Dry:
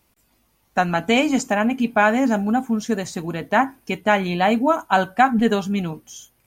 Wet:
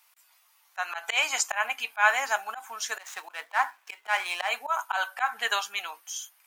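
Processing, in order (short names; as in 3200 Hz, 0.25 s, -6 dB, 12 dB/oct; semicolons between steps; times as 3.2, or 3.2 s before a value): 2.99–4.49 median filter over 9 samples; HPF 920 Hz 24 dB/oct; auto swell 0.141 s; gain +3.5 dB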